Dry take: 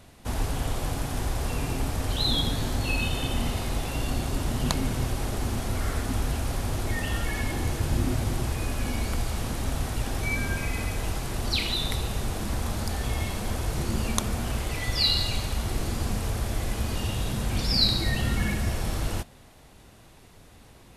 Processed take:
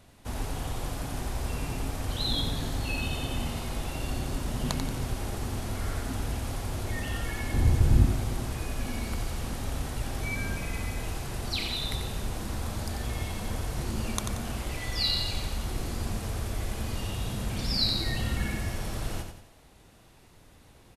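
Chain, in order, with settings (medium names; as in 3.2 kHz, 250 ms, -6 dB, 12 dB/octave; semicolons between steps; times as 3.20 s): 7.54–8.06 s: bass shelf 250 Hz +12 dB; on a send: feedback delay 90 ms, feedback 40%, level -6.5 dB; on the sum: trim -5 dB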